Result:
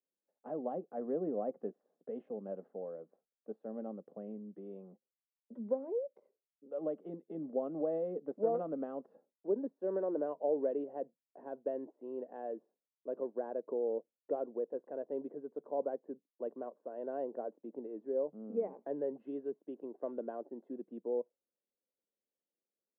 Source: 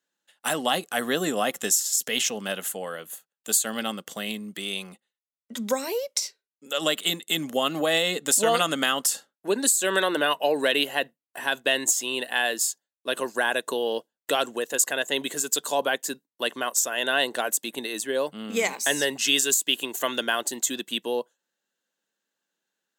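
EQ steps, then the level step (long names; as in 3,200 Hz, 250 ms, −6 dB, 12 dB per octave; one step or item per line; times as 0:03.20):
high-pass filter 160 Hz 24 dB per octave
transistor ladder low-pass 660 Hz, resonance 35%
−3.5 dB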